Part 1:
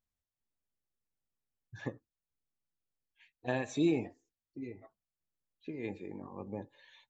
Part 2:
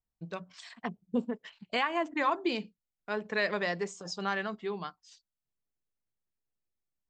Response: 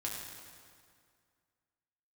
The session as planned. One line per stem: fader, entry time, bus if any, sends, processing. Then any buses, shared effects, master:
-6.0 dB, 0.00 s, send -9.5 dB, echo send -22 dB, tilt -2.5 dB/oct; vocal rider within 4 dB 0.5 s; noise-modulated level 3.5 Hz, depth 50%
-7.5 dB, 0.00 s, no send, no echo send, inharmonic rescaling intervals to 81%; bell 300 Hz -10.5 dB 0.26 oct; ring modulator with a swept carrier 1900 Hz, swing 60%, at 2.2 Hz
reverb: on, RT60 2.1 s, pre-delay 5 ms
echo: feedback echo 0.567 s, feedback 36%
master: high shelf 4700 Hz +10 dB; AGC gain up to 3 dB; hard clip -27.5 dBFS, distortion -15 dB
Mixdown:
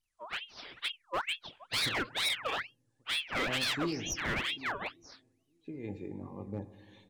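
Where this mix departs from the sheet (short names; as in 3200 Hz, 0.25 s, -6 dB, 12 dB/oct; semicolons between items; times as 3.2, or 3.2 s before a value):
stem 2 -7.5 dB -> +4.0 dB; master: missing AGC gain up to 3 dB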